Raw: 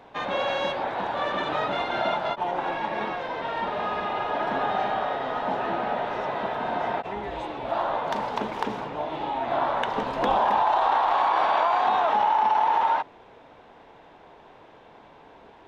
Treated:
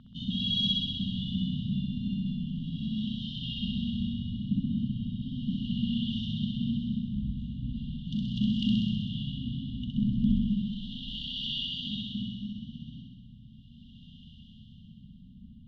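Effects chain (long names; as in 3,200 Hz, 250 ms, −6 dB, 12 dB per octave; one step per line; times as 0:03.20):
linear-phase brick-wall band-stop 250–2,800 Hz
auto-filter low-pass sine 0.37 Hz 840–2,200 Hz
flutter between parallel walls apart 11 metres, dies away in 1.3 s
level +9 dB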